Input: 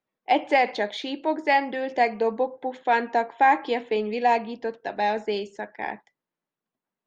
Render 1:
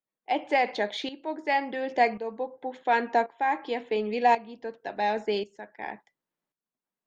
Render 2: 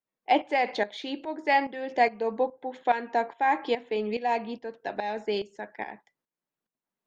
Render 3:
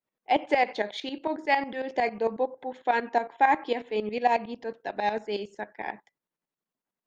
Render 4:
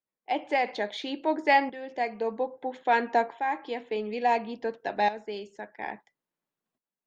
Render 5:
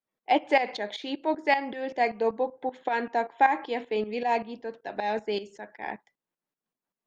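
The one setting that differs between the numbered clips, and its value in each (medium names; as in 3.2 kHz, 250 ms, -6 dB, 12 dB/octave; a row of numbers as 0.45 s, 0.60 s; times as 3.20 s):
tremolo, rate: 0.92 Hz, 2.4 Hz, 11 Hz, 0.59 Hz, 5.2 Hz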